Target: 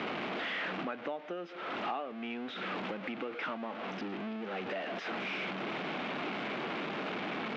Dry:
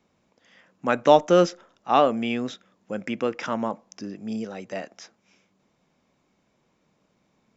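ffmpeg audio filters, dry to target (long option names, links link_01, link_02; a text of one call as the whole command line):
ffmpeg -i in.wav -af "aeval=exprs='val(0)+0.5*0.0708*sgn(val(0))':channel_layout=same,acompressor=threshold=-29dB:ratio=16,highpass=310,equalizer=frequency=530:width_type=q:width=4:gain=-6,equalizer=frequency=970:width_type=q:width=4:gain=-5,equalizer=frequency=1800:width_type=q:width=4:gain=-3,lowpass=frequency=3000:width=0.5412,lowpass=frequency=3000:width=1.3066,volume=-2dB" out.wav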